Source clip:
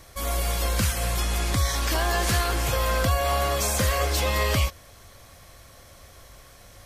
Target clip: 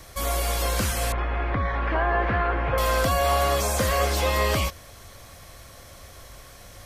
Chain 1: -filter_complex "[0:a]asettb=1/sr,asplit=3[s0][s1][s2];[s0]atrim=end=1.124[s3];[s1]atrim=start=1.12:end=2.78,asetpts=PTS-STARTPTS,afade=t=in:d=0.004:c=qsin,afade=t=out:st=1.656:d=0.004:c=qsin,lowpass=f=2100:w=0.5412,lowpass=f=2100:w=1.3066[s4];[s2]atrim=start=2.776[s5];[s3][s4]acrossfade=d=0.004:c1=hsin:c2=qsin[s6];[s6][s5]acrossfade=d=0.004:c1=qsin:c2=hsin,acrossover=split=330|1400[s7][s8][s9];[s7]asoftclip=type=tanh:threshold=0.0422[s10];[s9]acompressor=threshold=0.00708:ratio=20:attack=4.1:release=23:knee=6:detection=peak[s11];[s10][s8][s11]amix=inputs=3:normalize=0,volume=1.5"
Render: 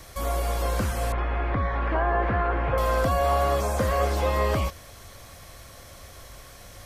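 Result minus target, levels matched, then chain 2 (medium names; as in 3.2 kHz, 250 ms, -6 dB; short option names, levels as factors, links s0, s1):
compression: peak gain reduction +10 dB
-filter_complex "[0:a]asettb=1/sr,asplit=3[s0][s1][s2];[s0]atrim=end=1.124[s3];[s1]atrim=start=1.12:end=2.78,asetpts=PTS-STARTPTS,afade=t=in:d=0.004:c=qsin,afade=t=out:st=1.656:d=0.004:c=qsin,lowpass=f=2100:w=0.5412,lowpass=f=2100:w=1.3066[s4];[s2]atrim=start=2.776[s5];[s3][s4]acrossfade=d=0.004:c1=hsin:c2=qsin[s6];[s6][s5]acrossfade=d=0.004:c1=qsin:c2=hsin,acrossover=split=330|1400[s7][s8][s9];[s7]asoftclip=type=tanh:threshold=0.0422[s10];[s9]acompressor=threshold=0.0237:ratio=20:attack=4.1:release=23:knee=6:detection=peak[s11];[s10][s8][s11]amix=inputs=3:normalize=0,volume=1.5"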